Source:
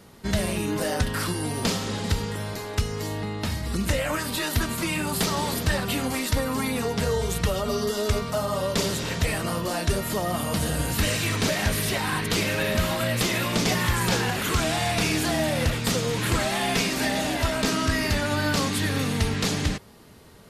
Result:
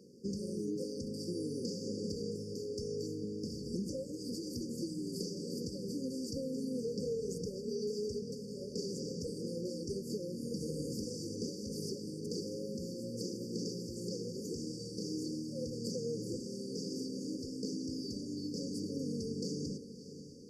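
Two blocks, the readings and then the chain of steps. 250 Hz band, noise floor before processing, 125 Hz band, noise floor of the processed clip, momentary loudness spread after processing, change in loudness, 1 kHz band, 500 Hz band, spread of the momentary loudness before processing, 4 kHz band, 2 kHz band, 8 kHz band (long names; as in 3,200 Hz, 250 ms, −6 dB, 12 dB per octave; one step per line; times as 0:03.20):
−10.0 dB, −34 dBFS, −17.0 dB, −46 dBFS, 3 LU, −14.5 dB, below −40 dB, −11.0 dB, 4 LU, −17.5 dB, below −40 dB, −17.0 dB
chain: three-way crossover with the lows and the highs turned down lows −24 dB, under 160 Hz, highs −22 dB, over 6,100 Hz
downward compressor, threshold −30 dBFS, peak gain reduction 9 dB
linear-phase brick-wall band-stop 550–4,500 Hz
feedback delay with all-pass diffusion 636 ms, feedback 48%, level −12.5 dB
level −3 dB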